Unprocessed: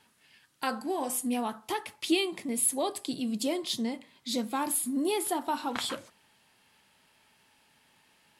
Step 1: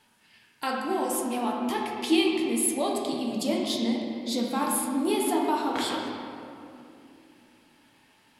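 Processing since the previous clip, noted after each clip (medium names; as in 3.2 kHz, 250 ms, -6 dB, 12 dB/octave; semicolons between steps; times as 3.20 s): reverberation RT60 2.7 s, pre-delay 7 ms, DRR -1.5 dB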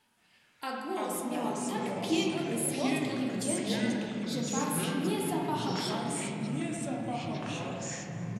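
ever faster or slower copies 172 ms, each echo -4 st, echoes 3; delay 303 ms -21 dB; trim -7 dB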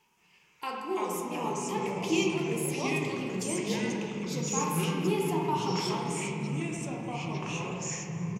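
rippled EQ curve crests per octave 0.76, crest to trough 11 dB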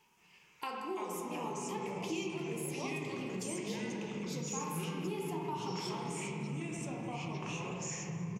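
compression 3:1, threshold -38 dBFS, peak gain reduction 12 dB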